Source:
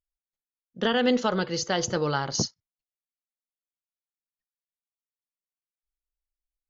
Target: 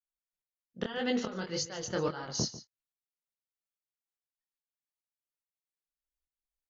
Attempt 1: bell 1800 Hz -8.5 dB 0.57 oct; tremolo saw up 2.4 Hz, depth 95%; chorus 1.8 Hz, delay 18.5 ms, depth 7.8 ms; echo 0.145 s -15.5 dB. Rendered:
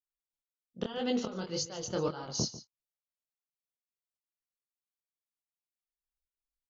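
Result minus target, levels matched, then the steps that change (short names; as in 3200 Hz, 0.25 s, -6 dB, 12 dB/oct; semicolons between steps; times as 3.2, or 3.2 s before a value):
2000 Hz band -6.5 dB
change: bell 1800 Hz +2 dB 0.57 oct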